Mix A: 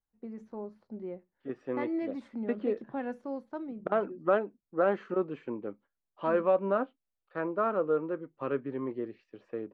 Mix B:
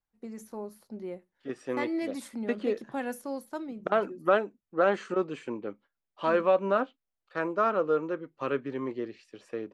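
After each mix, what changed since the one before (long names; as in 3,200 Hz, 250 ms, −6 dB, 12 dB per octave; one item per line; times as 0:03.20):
master: remove head-to-tape spacing loss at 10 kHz 35 dB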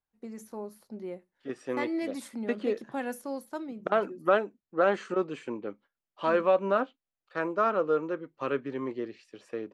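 master: add low-shelf EQ 66 Hz −6.5 dB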